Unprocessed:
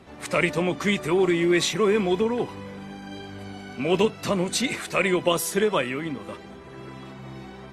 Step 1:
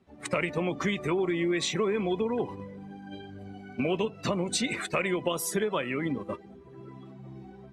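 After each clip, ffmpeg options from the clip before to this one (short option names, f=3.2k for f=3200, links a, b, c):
-af "afftdn=nr=15:nf=-36,agate=range=-8dB:threshold=-36dB:ratio=16:detection=peak,acompressor=threshold=-30dB:ratio=5,volume=4dB"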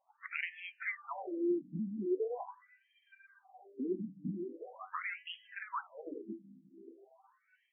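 -af "flanger=delay=9:depth=2:regen=85:speed=1.1:shape=sinusoidal,tremolo=f=3.3:d=0.32,afftfilt=real='re*between(b*sr/1024,220*pow(2400/220,0.5+0.5*sin(2*PI*0.42*pts/sr))/1.41,220*pow(2400/220,0.5+0.5*sin(2*PI*0.42*pts/sr))*1.41)':imag='im*between(b*sr/1024,220*pow(2400/220,0.5+0.5*sin(2*PI*0.42*pts/sr))/1.41,220*pow(2400/220,0.5+0.5*sin(2*PI*0.42*pts/sr))*1.41)':win_size=1024:overlap=0.75,volume=2dB"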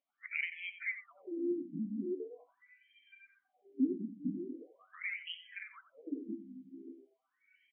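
-filter_complex "[0:a]asplit=2[a][b];[b]acompressor=threshold=-46dB:ratio=6,volume=-1.5dB[c];[a][c]amix=inputs=2:normalize=0,asplit=3[d][e][f];[d]bandpass=f=270:t=q:w=8,volume=0dB[g];[e]bandpass=f=2.29k:t=q:w=8,volume=-6dB[h];[f]bandpass=f=3.01k:t=q:w=8,volume=-9dB[i];[g][h][i]amix=inputs=3:normalize=0,aecho=1:1:90:0.237,volume=9dB"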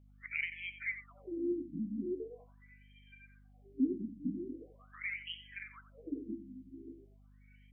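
-af "aeval=exprs='val(0)+0.001*(sin(2*PI*50*n/s)+sin(2*PI*2*50*n/s)/2+sin(2*PI*3*50*n/s)/3+sin(2*PI*4*50*n/s)/4+sin(2*PI*5*50*n/s)/5)':c=same"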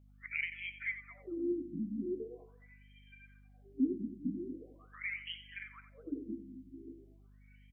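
-af "aecho=1:1:219:0.126"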